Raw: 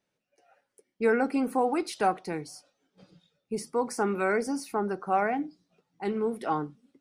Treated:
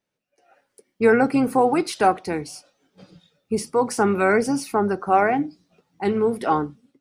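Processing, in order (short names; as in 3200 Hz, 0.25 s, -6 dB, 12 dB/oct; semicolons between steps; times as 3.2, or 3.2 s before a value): harmoniser -12 st -17 dB; AGC gain up to 10 dB; gain -1.5 dB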